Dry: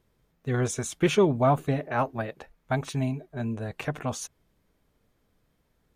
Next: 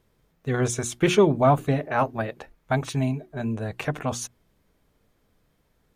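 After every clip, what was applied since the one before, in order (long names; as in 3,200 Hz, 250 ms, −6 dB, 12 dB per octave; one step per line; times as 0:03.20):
mains-hum notches 60/120/180/240/300/360 Hz
level +3.5 dB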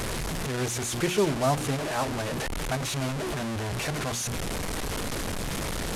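linear delta modulator 64 kbit/s, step −18 dBFS
level −6.5 dB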